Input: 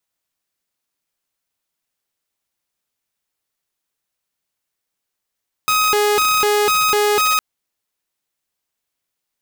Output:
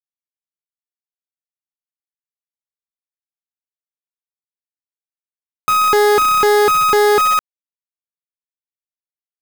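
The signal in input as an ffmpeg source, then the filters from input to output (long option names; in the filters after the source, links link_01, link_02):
-f lavfi -i "aevalsrc='0.282*(2*mod((838*t+422/2*(0.5-abs(mod(2*t,1)-0.5))),1)-1)':duration=1.71:sample_rate=44100"
-af "lowpass=1600,acontrast=33,acrusher=bits=4:dc=4:mix=0:aa=0.000001"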